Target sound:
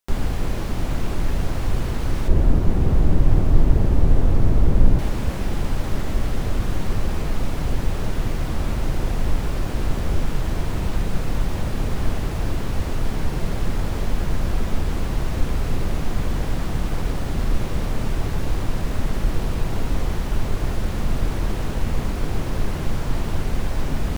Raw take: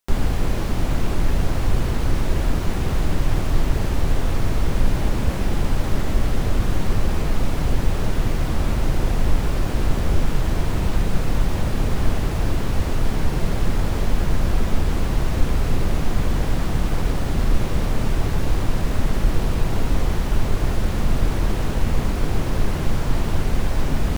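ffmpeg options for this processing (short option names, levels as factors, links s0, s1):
-filter_complex "[0:a]asettb=1/sr,asplit=3[s0][s1][s2];[s0]atrim=end=2.284[s3];[s1]atrim=start=2.28:end=4.99,asetpts=PTS-STARTPTS,afade=t=in:d=0.004:c=qsin,afade=t=out:st=2.706:d=0.004:c=qsin,tiltshelf=f=930:g=7[s4];[s2]atrim=start=4.986[s5];[s3][s4]acrossfade=d=0.004:c1=hsin:c2=qsin[s6];[s6][s5]acrossfade=d=0.004:c1=qsin:c2=hsin,volume=0.75"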